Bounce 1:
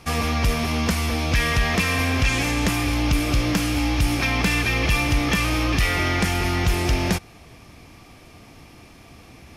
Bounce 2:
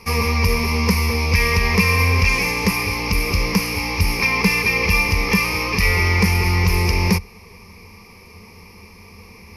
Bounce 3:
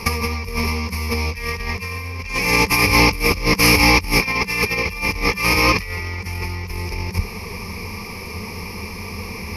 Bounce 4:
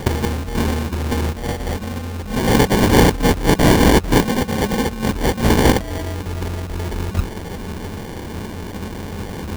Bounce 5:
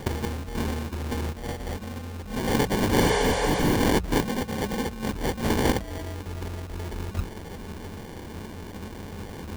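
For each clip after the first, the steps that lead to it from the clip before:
EQ curve with evenly spaced ripples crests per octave 0.85, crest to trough 16 dB
compressor whose output falls as the input rises −24 dBFS, ratio −0.5; level +5.5 dB
sample-rate reduction 1,300 Hz, jitter 0%; level +2 dB
mains-hum notches 60/120/180 Hz; healed spectral selection 0:03.03–0:03.72, 400–10,000 Hz both; level −9 dB

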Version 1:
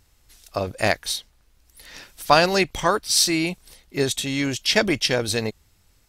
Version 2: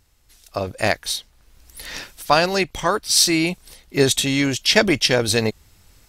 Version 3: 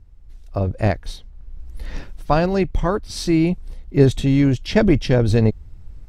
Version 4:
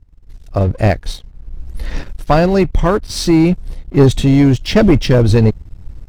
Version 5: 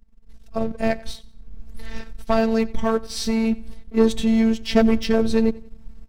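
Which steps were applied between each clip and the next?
automatic gain control gain up to 12 dB; level −1 dB
spectral tilt −4.5 dB per octave; level −4 dB
leveller curve on the samples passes 2
repeating echo 91 ms, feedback 36%, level −21 dB; phases set to zero 224 Hz; level −5 dB

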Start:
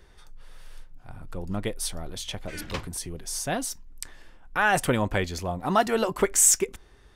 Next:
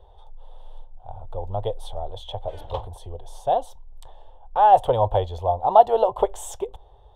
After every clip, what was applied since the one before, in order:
drawn EQ curve 110 Hz 0 dB, 170 Hz −19 dB, 300 Hz −17 dB, 480 Hz +3 dB, 860 Hz +9 dB, 1,400 Hz −18 dB, 2,300 Hz −25 dB, 3,400 Hz −4 dB, 4,800 Hz −25 dB, 11,000 Hz −23 dB
level +4 dB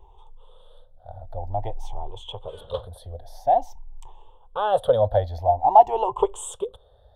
rippled gain that drifts along the octave scale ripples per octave 0.7, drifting +0.5 Hz, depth 16 dB
level −4 dB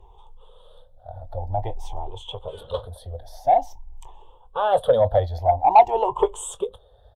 spectral magnitudes quantised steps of 15 dB
double-tracking delay 22 ms −14 dB
harmonic generator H 5 −25 dB, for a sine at −1 dBFS

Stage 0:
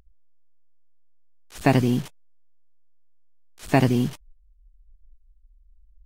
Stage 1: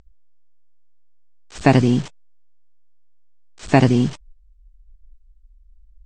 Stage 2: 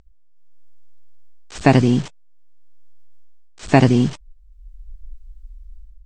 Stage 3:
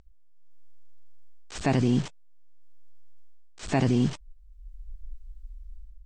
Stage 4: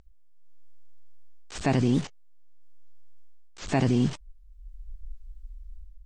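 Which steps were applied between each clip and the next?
Chebyshev low-pass filter 8,200 Hz, order 5; level +5 dB
automatic gain control gain up to 13 dB; level −1 dB
brickwall limiter −12 dBFS, peak gain reduction 10.5 dB; level −3.5 dB
wow of a warped record 78 rpm, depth 250 cents

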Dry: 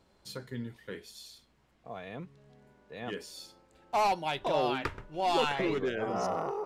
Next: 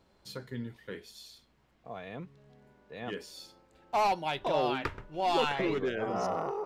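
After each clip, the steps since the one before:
parametric band 9,100 Hz −4 dB 1.1 octaves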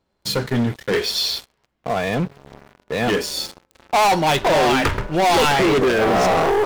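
gain on a spectral selection 0:00.94–0:01.66, 350–5,900 Hz +8 dB
leveller curve on the samples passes 5
level +4.5 dB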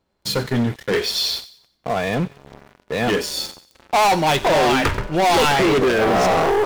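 delay with a high-pass on its return 92 ms, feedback 36%, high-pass 2,400 Hz, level −15 dB

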